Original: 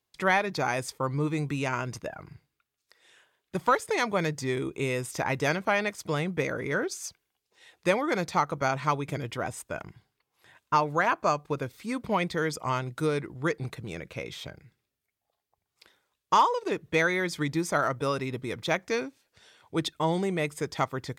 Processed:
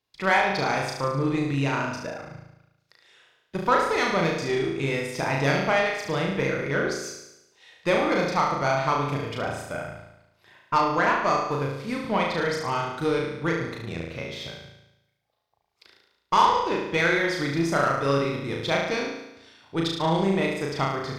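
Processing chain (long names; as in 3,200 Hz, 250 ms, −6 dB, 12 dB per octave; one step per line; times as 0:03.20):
0:11.37–0:12.03: variable-slope delta modulation 64 kbit/s
high shelf with overshoot 6,300 Hz −6.5 dB, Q 1.5
on a send: flutter between parallel walls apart 6.2 metres, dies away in 0.89 s
on the sum: harmonic generator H 8 −29 dB, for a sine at −6.5 dBFS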